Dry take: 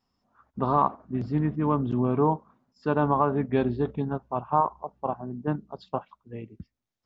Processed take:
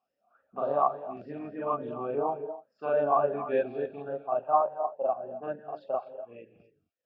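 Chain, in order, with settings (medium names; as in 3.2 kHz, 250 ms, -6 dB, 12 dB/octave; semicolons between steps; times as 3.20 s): reverse echo 42 ms -3 dB; gated-style reverb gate 280 ms rising, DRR 10 dB; talking filter a-e 3.5 Hz; trim +6 dB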